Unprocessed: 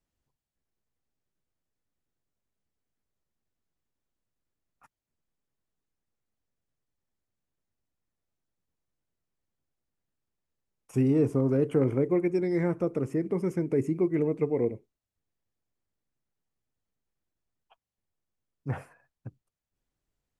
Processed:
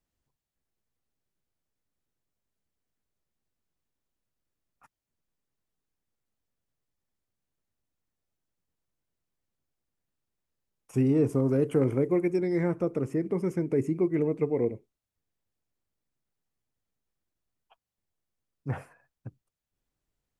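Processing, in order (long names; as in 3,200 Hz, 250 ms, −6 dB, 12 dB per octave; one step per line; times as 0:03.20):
0:11.29–0:12.36: high-shelf EQ 6,400 Hz +8.5 dB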